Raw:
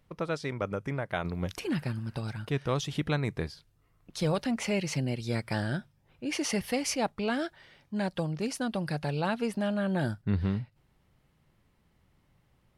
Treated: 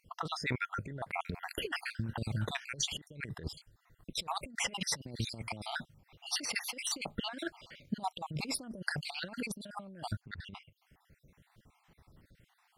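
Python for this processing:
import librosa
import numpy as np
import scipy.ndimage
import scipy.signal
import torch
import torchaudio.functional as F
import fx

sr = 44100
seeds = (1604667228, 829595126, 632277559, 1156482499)

y = fx.spec_dropout(x, sr, seeds[0], share_pct=55)
y = fx.over_compress(y, sr, threshold_db=-38.0, ratio=-0.5)
y = F.gain(torch.from_numpy(y), 1.5).numpy()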